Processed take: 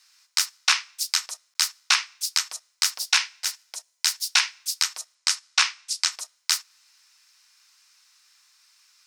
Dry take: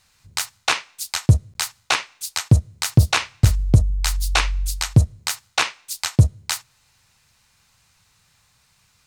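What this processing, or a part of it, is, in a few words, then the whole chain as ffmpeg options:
headphones lying on a table: -filter_complex "[0:a]asettb=1/sr,asplit=3[link_01][link_02][link_03];[link_01]atrim=end=2.984[link_04];[link_02]atrim=start=2.98:end=4.6,asetpts=PTS-STARTPTS,afade=type=in:duration=0.004:curve=qsin,afade=type=out:start_time=1.616:duration=0.004:curve=qsin,bandreject=frequency=1200:width=5.8[link_05];[link_03]atrim=start=4.596[link_06];[link_04][link_05]acrossfade=duration=0.004:curve1=hsin:curve2=qsin[link_07];[link_07][link_06]acrossfade=duration=0.004:curve1=qsin:curve2=hsin,highpass=frequency=1100:width=0.5412,highpass=frequency=1100:width=1.3066,equalizer=frequency=5300:width_type=o:width=0.46:gain=8.5,asettb=1/sr,asplit=3[link_08][link_09][link_10];[link_08]atrim=end=5.154[link_11];[link_09]atrim=start=5.15:end=6.12,asetpts=PTS-STARTPTS,afade=type=in:duration=0.004:curve=qsin,afade=type=out:start_time=0.966:duration=0.004:curve=qsin,lowpass=frequency=10000:width=0.5412,lowpass=frequency=10000:width=1.3066[link_12];[link_10]atrim=start=6.116[link_13];[link_11][link_12]acrossfade=duration=0.004:curve1=hsin:curve2=qsin[link_14];[link_14][link_13]acrossfade=duration=0.004:curve1=qsin:curve2=hsin,volume=-1dB"

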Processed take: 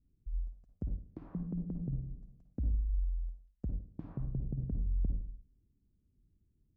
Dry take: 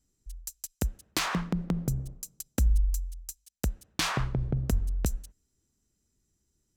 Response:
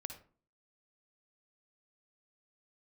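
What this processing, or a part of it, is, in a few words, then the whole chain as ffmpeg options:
television next door: -filter_complex "[0:a]acompressor=threshold=-40dB:ratio=3,lowpass=270[link_01];[1:a]atrim=start_sample=2205[link_02];[link_01][link_02]afir=irnorm=-1:irlink=0,volume=7dB"

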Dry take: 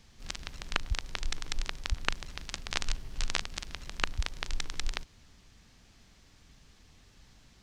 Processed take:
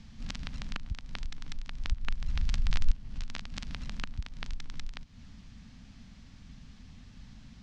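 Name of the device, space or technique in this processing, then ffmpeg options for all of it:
jukebox: -filter_complex "[0:a]lowpass=5800,lowshelf=frequency=290:width_type=q:width=3:gain=6.5,acompressor=threshold=-35dB:ratio=5,asettb=1/sr,asplit=3[link_01][link_02][link_03];[link_01]atrim=end=1.574[link_04];[link_02]atrim=start=1.57:end=2.91,asetpts=PTS-STARTPTS,afade=type=in:duration=0.004:curve=qsin,afade=type=out:start_time=1.336:duration=0.004:curve=qsin,asubboost=boost=11.5:cutoff=110[link_05];[link_03]atrim=start=2.906[link_06];[link_04][link_05]acrossfade=duration=0.004:curve1=hsin:curve2=qsin[link_07];[link_07][link_06]acrossfade=duration=0.004:curve1=qsin:curve2=hsin,volume=2dB"

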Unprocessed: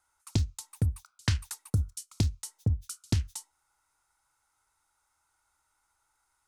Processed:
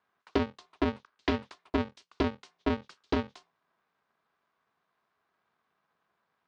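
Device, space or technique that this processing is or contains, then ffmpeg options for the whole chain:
ring modulator pedal into a guitar cabinet: -af "aeval=exprs='val(0)*sgn(sin(2*PI*170*n/s))':channel_layout=same,highpass=81,equalizer=frequency=110:width_type=q:width=4:gain=-9,equalizer=frequency=400:width_type=q:width=4:gain=7,equalizer=frequency=1000:width_type=q:width=4:gain=3,lowpass=frequency=3900:width=0.5412,lowpass=frequency=3900:width=1.3066,volume=-1.5dB"

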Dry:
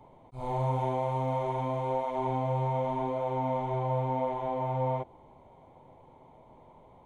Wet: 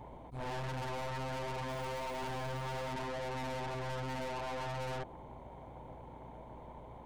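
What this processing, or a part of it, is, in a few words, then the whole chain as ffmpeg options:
valve amplifier with mains hum: -filter_complex "[0:a]asettb=1/sr,asplit=3[link_01][link_02][link_03];[link_01]atrim=end=1.684[link_04];[link_02]atrim=start=1.68:end=2.93,asetpts=PTS-STARTPTS,afade=type=in:duration=0.004:curve=qsin,afade=type=out:start_time=1.246:duration=0.004:curve=qsin,aemphasis=mode=production:type=75fm[link_05];[link_03]atrim=start=2.926[link_06];[link_04][link_05]acrossfade=duration=0.004:curve1=hsin:curve2=qsin[link_07];[link_07][link_06]acrossfade=duration=0.004:curve1=qsin:curve2=hsin,aeval=exprs='(tanh(158*val(0)+0.35)-tanh(0.35))/158':channel_layout=same,aeval=exprs='val(0)+0.001*(sin(2*PI*60*n/s)+sin(2*PI*2*60*n/s)/2+sin(2*PI*3*60*n/s)/3+sin(2*PI*4*60*n/s)/4+sin(2*PI*5*60*n/s)/5)':channel_layout=same,volume=5.5dB"

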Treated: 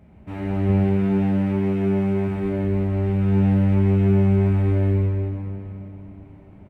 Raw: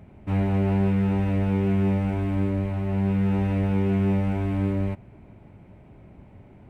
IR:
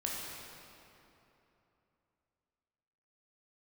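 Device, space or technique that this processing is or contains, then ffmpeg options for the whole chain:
cave: -filter_complex "[0:a]asettb=1/sr,asplit=3[link_01][link_02][link_03];[link_01]atrim=end=0.694[link_04];[link_02]atrim=start=0.69:end=2.28,asetpts=PTS-STARTPTS,afade=type=in:duration=0.004:curve=qsin,afade=type=out:start_time=1.586:duration=0.004:curve=qsin,highpass=160[link_05];[link_03]atrim=start=2.276[link_06];[link_04][link_05]acrossfade=duration=0.004:curve1=hsin:curve2=qsin[link_07];[link_07][link_06]acrossfade=duration=0.004:curve1=qsin:curve2=hsin,aecho=1:1:287:0.266,aecho=1:1:791:0.075[link_08];[1:a]atrim=start_sample=2205[link_09];[link_08][link_09]afir=irnorm=-1:irlink=0,volume=-3dB"

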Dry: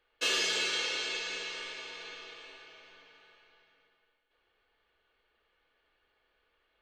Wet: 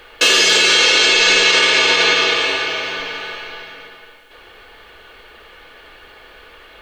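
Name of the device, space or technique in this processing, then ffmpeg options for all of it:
loud club master: -filter_complex "[0:a]asettb=1/sr,asplit=3[link_01][link_02][link_03];[link_01]atrim=end=1.474[link_04];[link_02]atrim=start=1.47:end=3,asetpts=PTS-STARTPTS,afade=type=in:duration=0.004:curve=qsin,afade=type=out:start_time=1.526:duration=0.004:curve=qsin,highpass=46[link_05];[link_03]atrim=start=2.996[link_06];[link_04][link_05]acrossfade=duration=0.004:curve1=hsin:curve2=qsin[link_07];[link_07][link_06]acrossfade=duration=0.004:curve1=qsin:curve2=hsin,acompressor=threshold=-37dB:ratio=2,asoftclip=type=hard:threshold=-26dB,alimiter=level_in=35dB:limit=-1dB:release=50:level=0:latency=1,volume=-2.5dB"

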